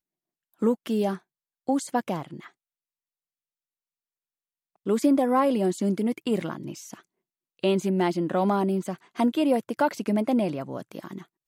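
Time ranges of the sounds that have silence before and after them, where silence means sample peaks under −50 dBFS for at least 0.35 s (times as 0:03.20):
0:00.54–0:01.19
0:01.67–0:02.50
0:04.86–0:07.01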